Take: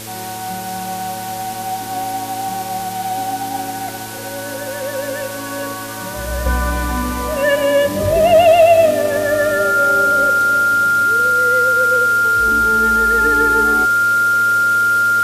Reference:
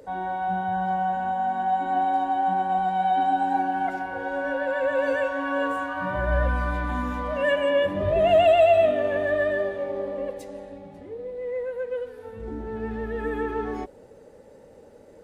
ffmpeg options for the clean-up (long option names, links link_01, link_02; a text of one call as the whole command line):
ffmpeg -i in.wav -af "bandreject=frequency=111.1:width_type=h:width=4,bandreject=frequency=222.2:width_type=h:width=4,bandreject=frequency=333.3:width_type=h:width=4,bandreject=frequency=444.4:width_type=h:width=4,bandreject=frequency=555.5:width_type=h:width=4,bandreject=frequency=1400:width=30,afwtdn=0.028,asetnsamples=nb_out_samples=441:pad=0,asendcmd='6.46 volume volume -7.5dB',volume=0dB" out.wav